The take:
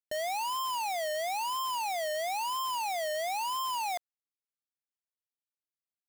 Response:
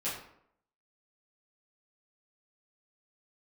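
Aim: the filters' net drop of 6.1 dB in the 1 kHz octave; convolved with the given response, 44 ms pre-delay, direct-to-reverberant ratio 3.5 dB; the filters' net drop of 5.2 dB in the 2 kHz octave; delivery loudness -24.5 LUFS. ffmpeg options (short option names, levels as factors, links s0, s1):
-filter_complex "[0:a]equalizer=f=1000:t=o:g=-6.5,equalizer=f=2000:t=o:g=-5,asplit=2[s0][s1];[1:a]atrim=start_sample=2205,adelay=44[s2];[s1][s2]afir=irnorm=-1:irlink=0,volume=0.398[s3];[s0][s3]amix=inputs=2:normalize=0,volume=3.16"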